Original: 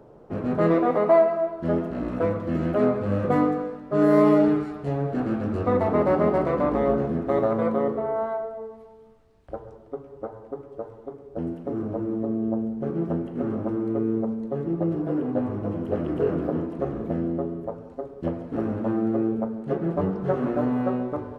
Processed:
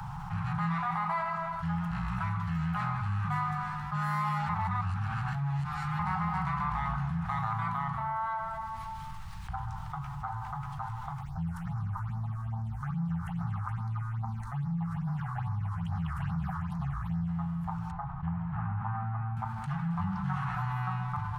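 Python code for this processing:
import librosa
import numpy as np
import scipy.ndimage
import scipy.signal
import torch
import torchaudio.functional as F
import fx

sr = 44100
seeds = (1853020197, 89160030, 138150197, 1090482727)

y = fx.phaser_stages(x, sr, stages=6, low_hz=180.0, high_hz=3000.0, hz=2.4, feedback_pct=25, at=(11.2, 17.27), fade=0.02)
y = fx.lowpass(y, sr, hz=1500.0, slope=12, at=(17.91, 19.37))
y = fx.edit(y, sr, fx.reverse_span(start_s=4.49, length_s=1.5), tone=tone)
y = scipy.signal.sosfilt(scipy.signal.cheby1(5, 1.0, [180.0, 800.0], 'bandstop', fs=sr, output='sos'), y)
y = fx.env_flatten(y, sr, amount_pct=70)
y = F.gain(torch.from_numpy(y), -4.5).numpy()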